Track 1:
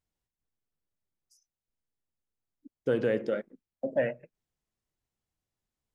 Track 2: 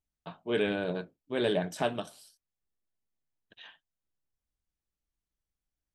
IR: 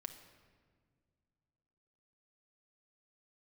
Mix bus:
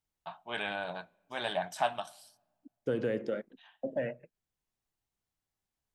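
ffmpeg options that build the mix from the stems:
-filter_complex "[0:a]acrossover=split=360|3000[s0][s1][s2];[s1]acompressor=threshold=0.0398:ratio=6[s3];[s0][s3][s2]amix=inputs=3:normalize=0,volume=0.708,asplit=2[s4][s5];[1:a]lowshelf=f=570:t=q:w=3:g=-10,volume=0.794,asplit=2[s6][s7];[s7]volume=0.141[s8];[s5]apad=whole_len=262135[s9];[s6][s9]sidechaincompress=threshold=0.00316:ratio=6:attack=16:release=453[s10];[2:a]atrim=start_sample=2205[s11];[s8][s11]afir=irnorm=-1:irlink=0[s12];[s4][s10][s12]amix=inputs=3:normalize=0"

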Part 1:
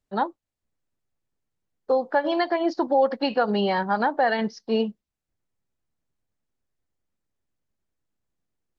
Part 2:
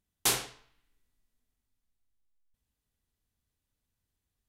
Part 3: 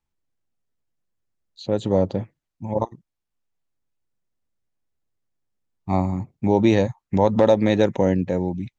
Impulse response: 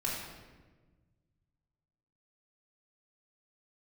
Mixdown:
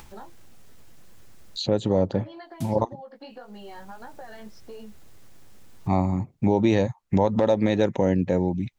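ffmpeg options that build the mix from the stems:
-filter_complex "[0:a]acompressor=threshold=0.0158:ratio=2,flanger=delay=15.5:depth=4.2:speed=1.7,volume=0.708[s0];[1:a]adelay=2350,volume=0.168[s1];[2:a]acompressor=mode=upward:threshold=0.0794:ratio=2.5,volume=1.06,asplit=2[s2][s3];[s3]apad=whole_len=301243[s4];[s1][s4]sidechaincompress=threshold=0.0562:ratio=8:attack=16:release=151[s5];[s0][s5]amix=inputs=2:normalize=0,acompressor=threshold=0.0112:ratio=6,volume=1[s6];[s2][s6]amix=inputs=2:normalize=0,alimiter=limit=0.316:level=0:latency=1:release=206"

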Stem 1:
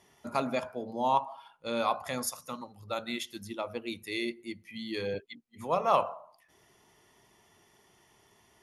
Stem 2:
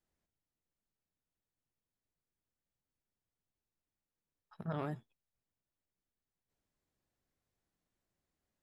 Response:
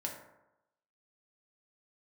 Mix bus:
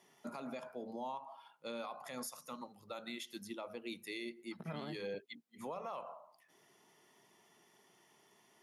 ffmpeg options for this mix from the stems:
-filter_complex "[0:a]alimiter=limit=0.0944:level=0:latency=1:release=482,volume=0.631[s0];[1:a]volume=1[s1];[s0][s1]amix=inputs=2:normalize=0,highpass=f=150:w=0.5412,highpass=f=150:w=1.3066,alimiter=level_in=3.16:limit=0.0631:level=0:latency=1:release=103,volume=0.316"

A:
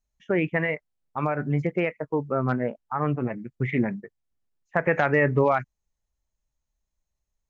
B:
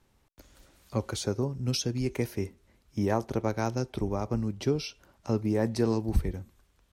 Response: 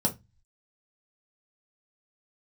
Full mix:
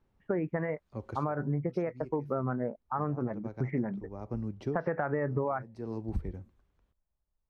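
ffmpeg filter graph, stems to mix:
-filter_complex "[0:a]lowpass=f=1500:w=0.5412,lowpass=f=1500:w=1.3066,volume=0.794,asplit=2[s0][s1];[1:a]lowpass=f=1200:p=1,volume=0.562[s2];[s1]apad=whole_len=305388[s3];[s2][s3]sidechaincompress=threshold=0.00562:ratio=3:attack=24:release=315[s4];[s0][s4]amix=inputs=2:normalize=0,acompressor=threshold=0.0447:ratio=6"

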